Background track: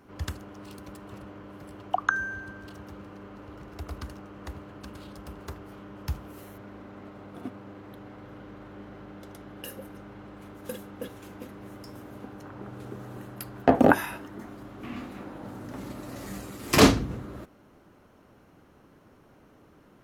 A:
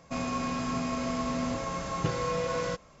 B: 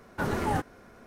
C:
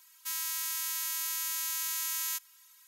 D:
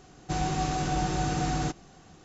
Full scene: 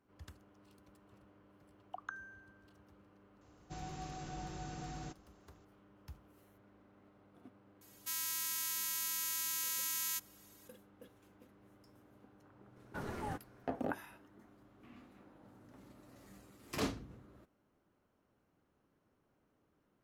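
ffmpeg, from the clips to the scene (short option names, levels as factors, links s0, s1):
-filter_complex "[0:a]volume=0.1[s0];[4:a]atrim=end=2.24,asetpts=PTS-STARTPTS,volume=0.141,afade=t=in:d=0.004:c=hsin,afade=t=out:st=2.236:d=0.004:c=hsin,adelay=150381S[s1];[3:a]atrim=end=2.87,asetpts=PTS-STARTPTS,volume=0.631,afade=t=in:d=0.004:c=hsin,afade=t=out:st=2.866:d=0.004:c=hsin,adelay=7810[s2];[2:a]atrim=end=1.06,asetpts=PTS-STARTPTS,volume=0.211,afade=t=in:d=0.004:c=hsin,afade=t=out:st=1.056:d=0.004:c=hsin,adelay=12760[s3];[s0][s1][s2][s3]amix=inputs=4:normalize=0"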